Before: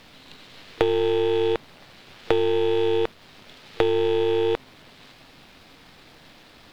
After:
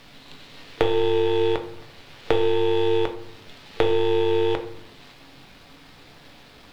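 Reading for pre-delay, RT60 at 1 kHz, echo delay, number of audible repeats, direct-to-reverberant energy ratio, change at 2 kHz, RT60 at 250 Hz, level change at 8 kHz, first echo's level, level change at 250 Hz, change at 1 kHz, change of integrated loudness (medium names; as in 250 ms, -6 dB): 7 ms, 0.70 s, no echo, no echo, 5.0 dB, +1.0 dB, 0.95 s, no reading, no echo, +0.5 dB, +2.0 dB, +0.5 dB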